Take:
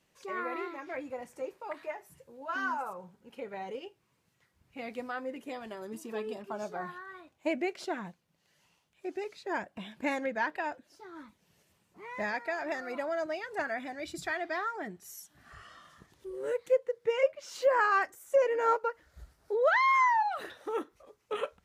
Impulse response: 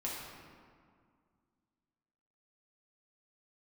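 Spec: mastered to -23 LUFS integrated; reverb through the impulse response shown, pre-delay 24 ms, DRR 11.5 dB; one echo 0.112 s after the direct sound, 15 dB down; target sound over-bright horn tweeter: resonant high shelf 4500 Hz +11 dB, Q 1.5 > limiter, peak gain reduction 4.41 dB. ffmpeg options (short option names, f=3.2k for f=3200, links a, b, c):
-filter_complex "[0:a]aecho=1:1:112:0.178,asplit=2[a][b];[1:a]atrim=start_sample=2205,adelay=24[c];[b][c]afir=irnorm=-1:irlink=0,volume=-14dB[d];[a][d]amix=inputs=2:normalize=0,highshelf=f=4.5k:t=q:w=1.5:g=11,volume=11dB,alimiter=limit=-8.5dB:level=0:latency=1"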